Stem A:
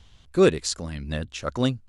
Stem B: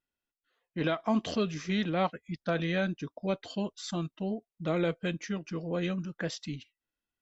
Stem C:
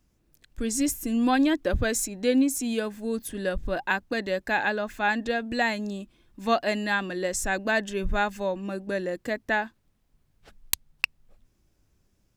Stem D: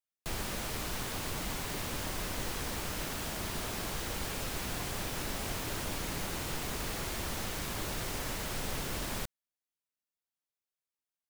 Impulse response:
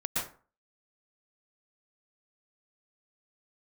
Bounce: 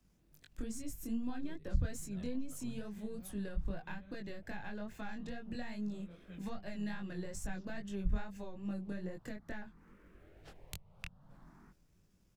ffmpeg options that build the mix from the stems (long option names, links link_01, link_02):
-filter_complex "[0:a]alimiter=limit=-11.5dB:level=0:latency=1:release=387,adelay=1050,volume=-16.5dB[link_01];[1:a]acompressor=threshold=-36dB:ratio=4,adelay=1250,volume=-14dB[link_02];[2:a]aeval=exprs='if(lt(val(0),0),0.708*val(0),val(0))':channel_layout=same,acrossover=split=140[link_03][link_04];[link_04]acompressor=threshold=-31dB:ratio=2.5[link_05];[link_03][link_05]amix=inputs=2:normalize=0,volume=1dB,asplit=2[link_06][link_07];[3:a]lowpass=1400,asplit=2[link_08][link_09];[link_09]afreqshift=0.51[link_10];[link_08][link_10]amix=inputs=2:normalize=1,adelay=2450,volume=-16.5dB[link_11];[link_07]apad=whole_len=129266[link_12];[link_01][link_12]sidechaincompress=threshold=-32dB:ratio=8:attack=48:release=358[link_13];[link_13][link_02][link_06][link_11]amix=inputs=4:normalize=0,equalizer=frequency=170:width=3.5:gain=7,acrossover=split=170[link_14][link_15];[link_15]acompressor=threshold=-44dB:ratio=4[link_16];[link_14][link_16]amix=inputs=2:normalize=0,flanger=delay=19.5:depth=5:speed=2.4"